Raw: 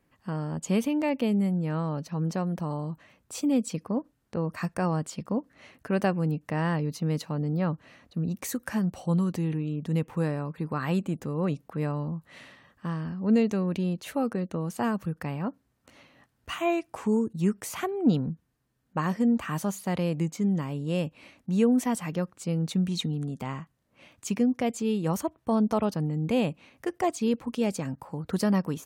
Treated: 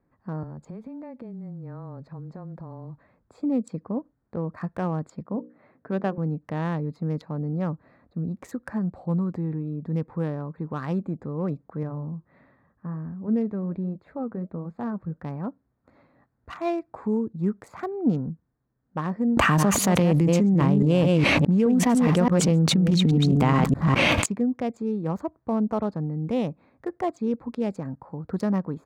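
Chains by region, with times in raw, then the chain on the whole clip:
0.43–3.42 s: compression 12:1, threshold -35 dBFS + modulation noise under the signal 32 dB + frequency shift -14 Hz
5.24–6.18 s: high-pass 110 Hz 24 dB/octave + distance through air 210 m + hum notches 60/120/180/240/300/360/420/480/540 Hz
11.83–15.25 s: tone controls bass +4 dB, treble -12 dB + flange 1.4 Hz, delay 2.4 ms, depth 5.4 ms, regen -74%
19.37–24.26 s: chunks repeated in reverse 208 ms, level -7 dB + level flattener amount 100%
whole clip: local Wiener filter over 15 samples; treble shelf 6.8 kHz -10.5 dB

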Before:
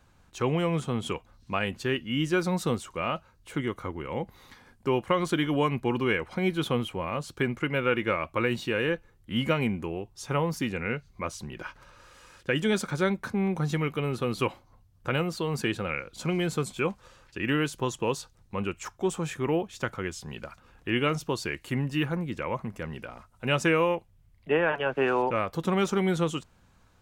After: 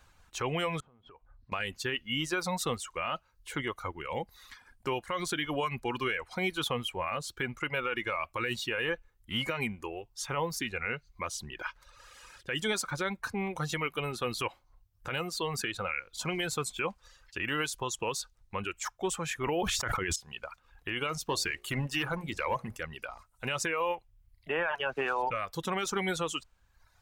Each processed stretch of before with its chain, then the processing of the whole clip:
0.80–1.52 s: low-pass 1.3 kHz + compression 12:1, threshold -44 dBFS
19.43–20.16 s: expander -41 dBFS + level flattener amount 100%
21.22–22.77 s: de-hum 59.95 Hz, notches 14 + waveshaping leveller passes 1
whole clip: reverb removal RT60 0.94 s; peaking EQ 210 Hz -11.5 dB 2.7 oct; peak limiter -25.5 dBFS; trim +4 dB

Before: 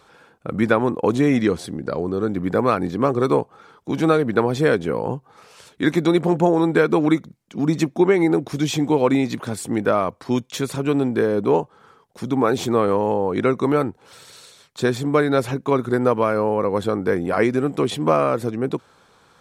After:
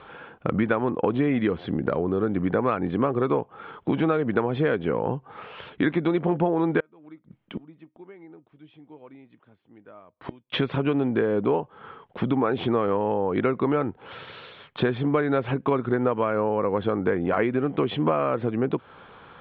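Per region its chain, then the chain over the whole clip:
6.80–10.53 s: inverted gate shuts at -23 dBFS, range -33 dB + feedback comb 310 Hz, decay 0.16 s, mix 40%
whole clip: elliptic low-pass 3.2 kHz, stop band 60 dB; compression 4:1, threshold -30 dBFS; trim +8 dB

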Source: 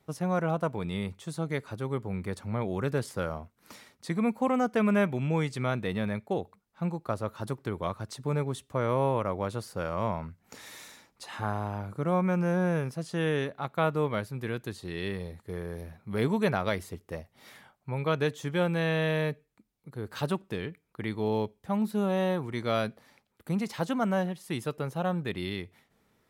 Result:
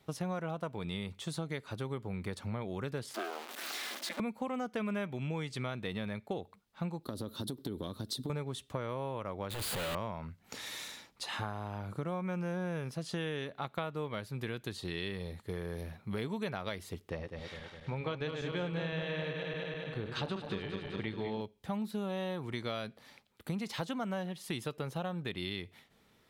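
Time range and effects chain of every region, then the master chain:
3.14–4.20 s: jump at every zero crossing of -33 dBFS + rippled Chebyshev high-pass 370 Hz, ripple 3 dB + ring modulator 160 Hz
7.03–8.30 s: FFT filter 150 Hz 0 dB, 260 Hz +10 dB, 480 Hz +1 dB, 770 Hz -8 dB, 1.6 kHz -8 dB, 2.5 kHz -11 dB, 3.7 kHz +6 dB, 6.7 kHz -2 dB, 12 kHz +9 dB + compression, threshold -32 dBFS
9.50–9.95 s: one-bit comparator + peaking EQ 5.6 kHz -11 dB 0.47 oct
17.09–21.41 s: backward echo that repeats 102 ms, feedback 78%, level -7 dB + distance through air 90 m
whole clip: peaking EQ 3.5 kHz +6.5 dB 1.1 oct; compression 6:1, threshold -35 dBFS; trim +1 dB

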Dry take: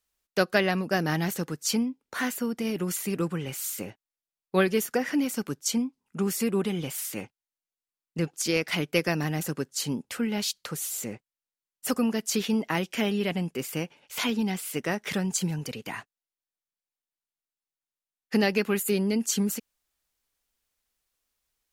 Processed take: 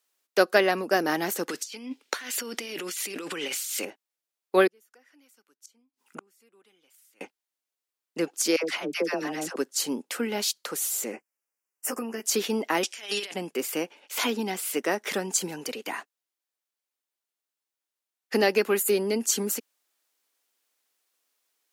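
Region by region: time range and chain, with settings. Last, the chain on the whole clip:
1.49–3.85 s: frequency weighting D + compressor with a negative ratio -37 dBFS
4.67–7.21 s: peaking EQ 1.4 kHz +2.5 dB 0.34 oct + inverted gate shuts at -26 dBFS, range -39 dB + tape noise reduction on one side only encoder only
8.56–9.56 s: low-pass 8.2 kHz + compression 1.5:1, threshold -31 dBFS + phase dispersion lows, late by 80 ms, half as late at 790 Hz
11.12–12.24 s: doubling 13 ms -2 dB + compression 12:1, threshold -29 dBFS + Butterworth band-stop 3.8 kHz, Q 1.7
12.83–13.34 s: frequency weighting ITU-R 468 + compressor with a negative ratio -34 dBFS, ratio -0.5
whole clip: high-pass 280 Hz 24 dB/octave; dynamic bell 2.8 kHz, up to -4 dB, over -41 dBFS, Q 0.76; trim +4.5 dB

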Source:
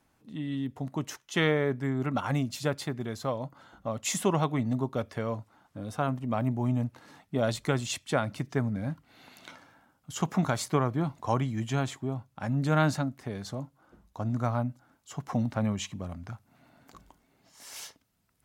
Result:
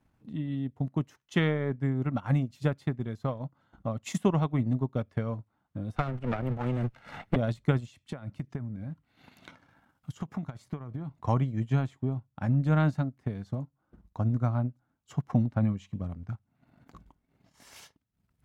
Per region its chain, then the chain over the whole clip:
5.96–7.36 s: comb filter that takes the minimum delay 1.4 ms + peaking EQ 1.9 kHz +8.5 dB 2.9 oct + three bands compressed up and down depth 100%
7.89–11.12 s: compression, threshold -35 dBFS + tape noise reduction on one side only encoder only
whole clip: tone controls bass +9 dB, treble -7 dB; transient shaper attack +5 dB, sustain -10 dB; trim -5.5 dB

